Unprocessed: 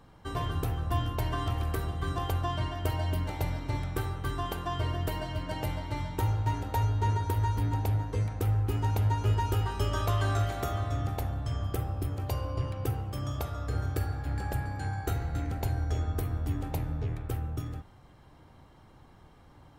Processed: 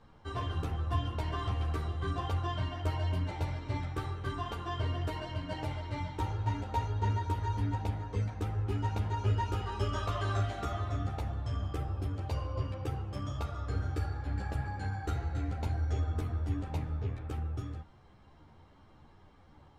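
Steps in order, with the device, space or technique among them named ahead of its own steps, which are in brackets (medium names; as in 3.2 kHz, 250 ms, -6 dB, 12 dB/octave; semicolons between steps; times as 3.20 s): string-machine ensemble chorus (three-phase chorus; low-pass 6.3 kHz 12 dB/octave)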